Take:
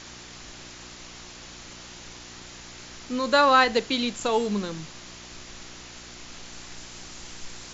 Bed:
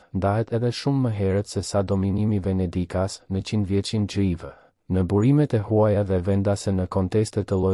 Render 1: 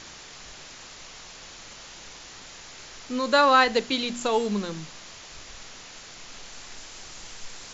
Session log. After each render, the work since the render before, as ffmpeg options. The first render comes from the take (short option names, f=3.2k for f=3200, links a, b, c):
-af "bandreject=f=60:t=h:w=4,bandreject=f=120:t=h:w=4,bandreject=f=180:t=h:w=4,bandreject=f=240:t=h:w=4,bandreject=f=300:t=h:w=4,bandreject=f=360:t=h:w=4"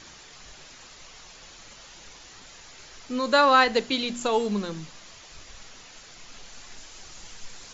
-af "afftdn=nr=6:nf=-45"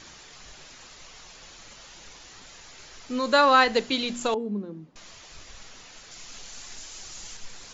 -filter_complex "[0:a]asettb=1/sr,asplit=3[a][b][c];[a]atrim=end=4.344[d];[b]atrim=start=4.34:end=4.96,asetpts=PTS-STARTPTS,afade=t=in:d=0.004:c=qsin,afade=t=out:st=0.616:d=0.004:c=qsin,bandpass=f=270:t=q:w=1.6[e];[c]atrim=start=4.956[f];[d][e]acrossfade=d=0.004:c1=hsin:c2=qsin[g];[g][f]acrossfade=d=0.004:c1=qsin:c2=hsin,asettb=1/sr,asplit=3[h][i][j];[h]atrim=end=6.114[k];[i]atrim=start=6.11:end=7.37,asetpts=PTS-STARTPTS,afade=t=in:d=0.004:c=qsin,afade=t=out:st=1.256:d=0.004:c=qsin,aemphasis=mode=production:type=cd[l];[j]atrim=start=7.366[m];[k][l]acrossfade=d=0.004:c1=hsin:c2=qsin[n];[n][m]acrossfade=d=0.004:c1=qsin:c2=hsin"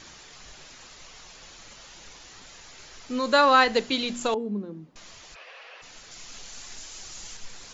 -filter_complex "[0:a]asplit=3[a][b][c];[a]afade=t=out:st=5.34:d=0.02[d];[b]highpass=f=460:w=0.5412,highpass=f=460:w=1.3066,equalizer=f=510:t=q:w=4:g=10,equalizer=f=720:t=q:w=4:g=5,equalizer=f=1.1k:t=q:w=4:g=4,equalizer=f=1.7k:t=q:w=4:g=6,equalizer=f=2.6k:t=q:w=4:g=9,equalizer=f=3.7k:t=q:w=4:g=-4,lowpass=f=4.1k:w=0.5412,lowpass=f=4.1k:w=1.3066,afade=t=in:st=5.34:d=0.02,afade=t=out:st=5.81:d=0.02[e];[c]afade=t=in:st=5.81:d=0.02[f];[d][e][f]amix=inputs=3:normalize=0"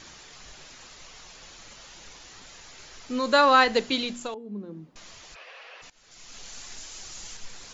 -filter_complex "[0:a]asplit=4[a][b][c][d];[a]atrim=end=4.34,asetpts=PTS-STARTPTS,afade=t=out:st=3.98:d=0.36:silence=0.281838[e];[b]atrim=start=4.34:end=4.43,asetpts=PTS-STARTPTS,volume=-11dB[f];[c]atrim=start=4.43:end=5.9,asetpts=PTS-STARTPTS,afade=t=in:d=0.36:silence=0.281838,afade=t=out:st=1.466:d=0.004:c=hsin:silence=0.0891251[g];[d]atrim=start=5.9,asetpts=PTS-STARTPTS,afade=t=in:d=0.57:silence=0.0891251[h];[e][f][g][h]concat=n=4:v=0:a=1"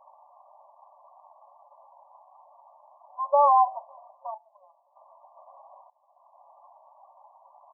-af "afftfilt=real='re*between(b*sr/4096,540,1200)':imag='im*between(b*sr/4096,540,1200)':win_size=4096:overlap=0.75,aecho=1:1:1.2:0.8"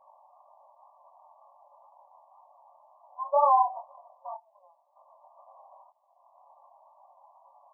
-af "flanger=delay=20:depth=5.1:speed=2"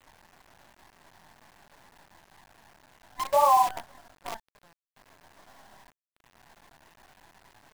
-filter_complex "[0:a]asplit=2[a][b];[b]asoftclip=type=tanh:threshold=-25dB,volume=-10dB[c];[a][c]amix=inputs=2:normalize=0,acrusher=bits=6:dc=4:mix=0:aa=0.000001"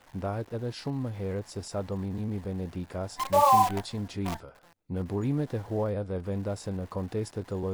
-filter_complex "[1:a]volume=-10.5dB[a];[0:a][a]amix=inputs=2:normalize=0"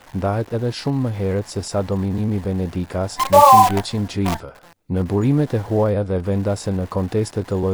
-af "volume=11.5dB,alimiter=limit=-1dB:level=0:latency=1"